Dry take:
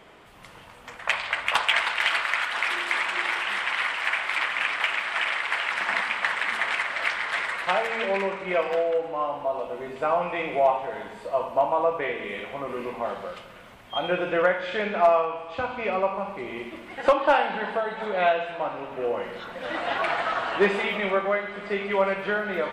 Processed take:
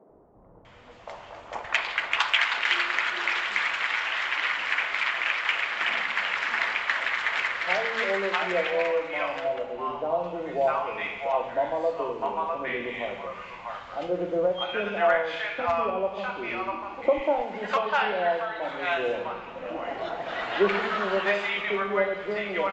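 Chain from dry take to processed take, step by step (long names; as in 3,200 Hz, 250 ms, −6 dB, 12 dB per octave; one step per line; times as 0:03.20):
three-band delay without the direct sound mids, lows, highs 90/650 ms, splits 170/790 Hz
0:18.73–0:19.26: floating-point word with a short mantissa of 4 bits
AAC 64 kbit/s 16,000 Hz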